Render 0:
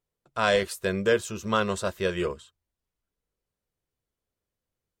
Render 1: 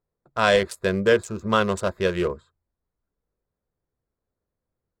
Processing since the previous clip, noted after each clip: Wiener smoothing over 15 samples; gain +4.5 dB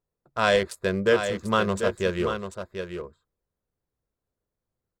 echo 0.741 s -8 dB; gain -2.5 dB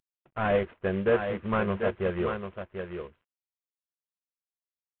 CVSD 16 kbps; gain -2 dB

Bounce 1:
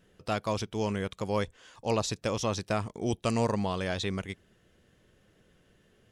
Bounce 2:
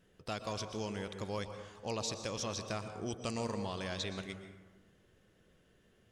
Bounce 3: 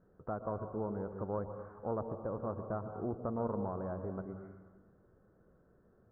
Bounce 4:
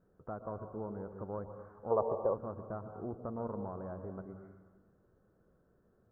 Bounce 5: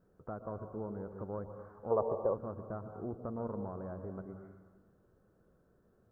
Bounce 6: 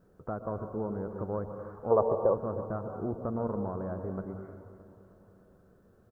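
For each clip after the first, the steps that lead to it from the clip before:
dynamic EQ 5200 Hz, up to +7 dB, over -52 dBFS, Q 0.7; compressor 1.5:1, threshold -40 dBFS, peak gain reduction 6.5 dB; plate-style reverb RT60 1.3 s, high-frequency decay 0.4×, pre-delay 0.105 s, DRR 7.5 dB; gain -4.5 dB
treble ducked by the level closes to 1100 Hz, closed at -38.5 dBFS; added harmonics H 2 -15 dB, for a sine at -26.5 dBFS; elliptic low-pass 1400 Hz, stop band 60 dB; gain +2.5 dB
spectral gain 1.91–2.34, 360–1200 Hz +12 dB; gain -3.5 dB
dynamic EQ 880 Hz, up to -3 dB, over -50 dBFS, Q 1.2; gain +1 dB
feedback echo 0.31 s, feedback 57%, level -14.5 dB; gain +6.5 dB

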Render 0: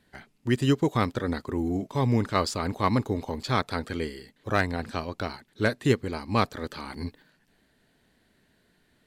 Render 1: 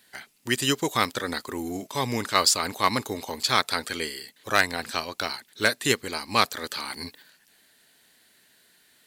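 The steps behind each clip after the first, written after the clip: tilt +4 dB/oct; gain +3 dB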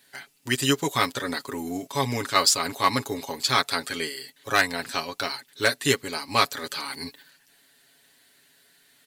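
comb 7.2 ms; gain -1 dB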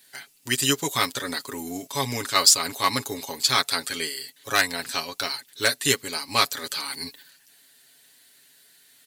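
high shelf 3200 Hz +9 dB; gain -2.5 dB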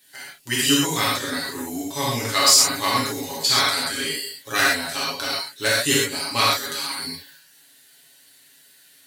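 reverb, pre-delay 3 ms, DRR -6 dB; gain -3.5 dB

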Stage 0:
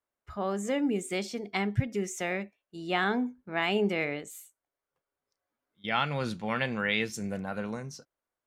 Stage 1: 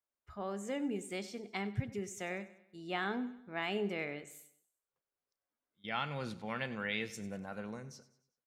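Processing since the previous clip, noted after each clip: feedback echo 97 ms, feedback 46%, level -16.5 dB; gain -8.5 dB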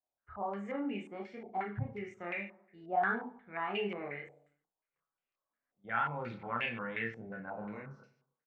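doubler 35 ms -6.5 dB; chorus voices 2, 0.31 Hz, delay 27 ms, depth 1.9 ms; stepped low-pass 5.6 Hz 750–2600 Hz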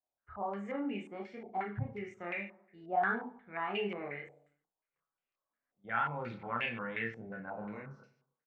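nothing audible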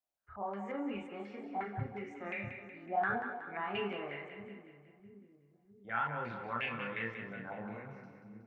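split-band echo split 340 Hz, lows 0.654 s, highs 0.185 s, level -8 dB; gain -2 dB

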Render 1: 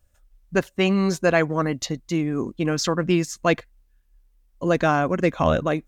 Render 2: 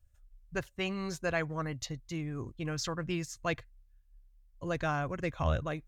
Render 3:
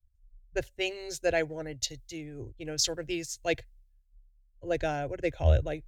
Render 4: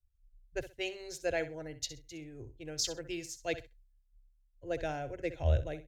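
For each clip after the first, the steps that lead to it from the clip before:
EQ curve 120 Hz 0 dB, 200 Hz -16 dB, 1700 Hz -9 dB; gain -1.5 dB
fixed phaser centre 470 Hz, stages 4; three-band expander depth 70%; gain +5.5 dB
feedback echo 64 ms, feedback 21%, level -13.5 dB; gain -6 dB

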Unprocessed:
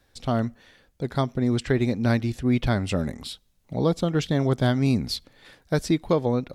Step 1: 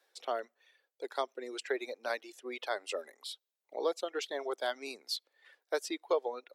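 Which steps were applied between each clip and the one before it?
steep high-pass 390 Hz 36 dB/oct; reverb removal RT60 1.9 s; gain -6 dB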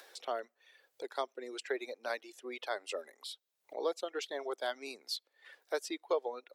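upward compressor, threshold -41 dBFS; gain -2 dB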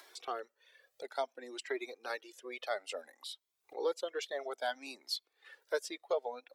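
cascading flanger rising 0.59 Hz; gain +4 dB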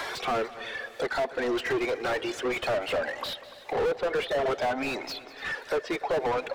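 treble ducked by the level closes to 880 Hz, closed at -31.5 dBFS; overdrive pedal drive 40 dB, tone 1300 Hz, clips at -20 dBFS; multi-head echo 98 ms, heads second and third, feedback 52%, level -18 dB; gain +1.5 dB

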